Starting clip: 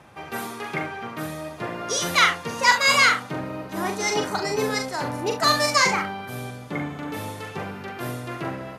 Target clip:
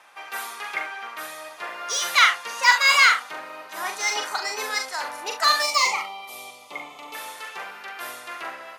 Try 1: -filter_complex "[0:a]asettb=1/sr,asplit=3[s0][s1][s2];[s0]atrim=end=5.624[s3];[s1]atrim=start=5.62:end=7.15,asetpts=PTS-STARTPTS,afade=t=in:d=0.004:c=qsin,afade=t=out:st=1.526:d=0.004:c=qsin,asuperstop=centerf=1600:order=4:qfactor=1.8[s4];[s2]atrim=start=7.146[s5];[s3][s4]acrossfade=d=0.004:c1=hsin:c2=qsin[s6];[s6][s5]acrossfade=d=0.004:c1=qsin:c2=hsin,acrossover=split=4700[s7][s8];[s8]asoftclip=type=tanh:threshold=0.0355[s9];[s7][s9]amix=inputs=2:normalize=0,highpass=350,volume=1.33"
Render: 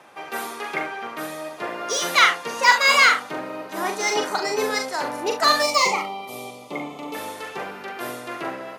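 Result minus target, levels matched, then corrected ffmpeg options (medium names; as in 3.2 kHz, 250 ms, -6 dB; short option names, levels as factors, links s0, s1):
250 Hz band +16.0 dB
-filter_complex "[0:a]asettb=1/sr,asplit=3[s0][s1][s2];[s0]atrim=end=5.624[s3];[s1]atrim=start=5.62:end=7.15,asetpts=PTS-STARTPTS,afade=t=in:d=0.004:c=qsin,afade=t=out:st=1.526:d=0.004:c=qsin,asuperstop=centerf=1600:order=4:qfactor=1.8[s4];[s2]atrim=start=7.146[s5];[s3][s4]acrossfade=d=0.004:c1=hsin:c2=qsin[s6];[s6][s5]acrossfade=d=0.004:c1=qsin:c2=hsin,acrossover=split=4700[s7][s8];[s8]asoftclip=type=tanh:threshold=0.0355[s9];[s7][s9]amix=inputs=2:normalize=0,highpass=990,volume=1.33"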